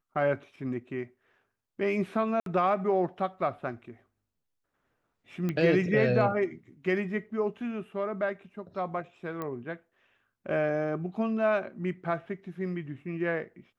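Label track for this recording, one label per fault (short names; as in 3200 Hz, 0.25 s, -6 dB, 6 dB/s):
2.400000	2.460000	gap 62 ms
5.490000	5.490000	pop -19 dBFS
9.420000	9.420000	pop -22 dBFS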